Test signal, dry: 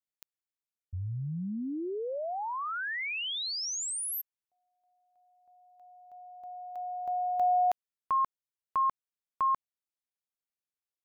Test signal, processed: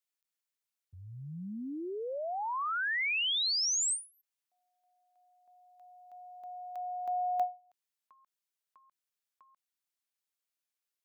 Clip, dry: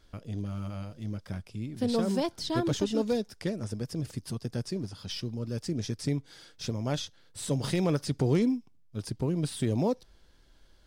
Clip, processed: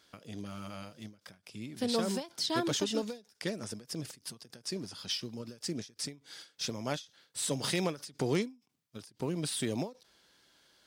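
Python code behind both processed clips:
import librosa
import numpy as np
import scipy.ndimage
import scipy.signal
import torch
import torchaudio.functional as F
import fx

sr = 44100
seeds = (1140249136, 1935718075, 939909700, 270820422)

y = scipy.signal.sosfilt(scipy.signal.butter(2, 160.0, 'highpass', fs=sr, output='sos'), x)
y = fx.tilt_shelf(y, sr, db=-4.5, hz=920.0)
y = fx.end_taper(y, sr, db_per_s=200.0)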